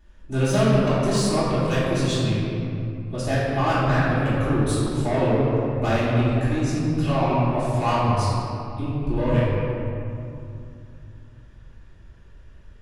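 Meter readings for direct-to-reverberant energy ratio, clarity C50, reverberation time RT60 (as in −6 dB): −12.0 dB, −4.0 dB, 2.7 s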